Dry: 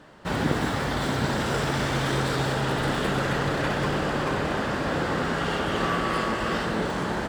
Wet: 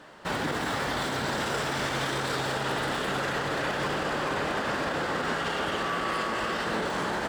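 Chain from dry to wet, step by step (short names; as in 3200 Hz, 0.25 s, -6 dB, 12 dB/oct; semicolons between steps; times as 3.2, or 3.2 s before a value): low shelf 270 Hz -10.5 dB; limiter -23.5 dBFS, peak gain reduction 8.5 dB; gain +3 dB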